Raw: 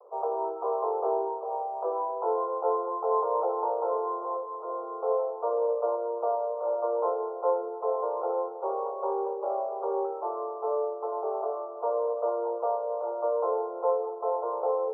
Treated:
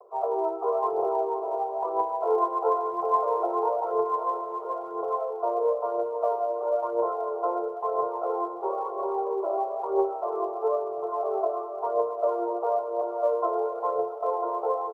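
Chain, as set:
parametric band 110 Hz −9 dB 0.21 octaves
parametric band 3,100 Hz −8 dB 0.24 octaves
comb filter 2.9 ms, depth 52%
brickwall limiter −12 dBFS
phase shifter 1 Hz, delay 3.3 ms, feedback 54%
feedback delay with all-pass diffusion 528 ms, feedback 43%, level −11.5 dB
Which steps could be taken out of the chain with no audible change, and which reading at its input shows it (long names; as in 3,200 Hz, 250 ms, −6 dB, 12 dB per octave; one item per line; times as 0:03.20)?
parametric band 110 Hz: nothing at its input below 340 Hz
parametric band 3,100 Hz: nothing at its input above 1,400 Hz
brickwall limiter −12 dBFS: peak of its input −14.5 dBFS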